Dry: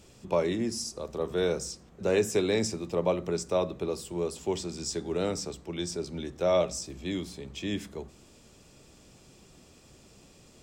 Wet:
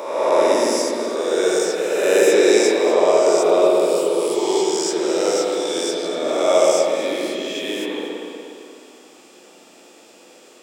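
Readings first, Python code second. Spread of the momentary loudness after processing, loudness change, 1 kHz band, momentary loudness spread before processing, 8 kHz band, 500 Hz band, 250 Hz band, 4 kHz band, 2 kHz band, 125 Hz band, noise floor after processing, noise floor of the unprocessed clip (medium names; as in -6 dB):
10 LU, +13.0 dB, +15.0 dB, 10 LU, +11.5 dB, +14.0 dB, +10.0 dB, +12.0 dB, +14.0 dB, no reading, -47 dBFS, -57 dBFS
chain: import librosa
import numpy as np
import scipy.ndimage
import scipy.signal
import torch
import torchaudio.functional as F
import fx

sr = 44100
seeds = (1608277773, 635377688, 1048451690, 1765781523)

p1 = fx.spec_swells(x, sr, rise_s=1.66)
p2 = scipy.signal.sosfilt(scipy.signal.butter(4, 310.0, 'highpass', fs=sr, output='sos'), p1)
p3 = fx.high_shelf(p2, sr, hz=7400.0, db=4.5)
p4 = p3 + fx.echo_alternate(p3, sr, ms=120, hz=1900.0, feedback_pct=60, wet_db=-9.0, dry=0)
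p5 = fx.rev_spring(p4, sr, rt60_s=2.4, pass_ms=(52, 60), chirp_ms=70, drr_db=-4.5)
y = F.gain(torch.from_numpy(p5), 3.0).numpy()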